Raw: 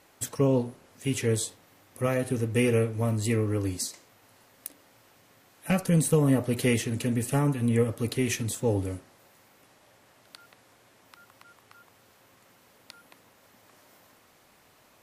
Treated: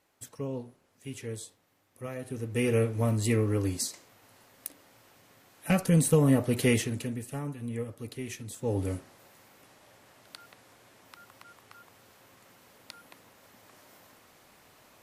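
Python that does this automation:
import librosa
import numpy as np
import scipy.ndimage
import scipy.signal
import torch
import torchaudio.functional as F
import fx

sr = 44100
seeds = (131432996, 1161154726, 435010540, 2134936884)

y = fx.gain(x, sr, db=fx.line((2.13, -12.0), (2.86, 0.0), (6.81, 0.0), (7.26, -11.0), (8.47, -11.0), (8.9, 1.5)))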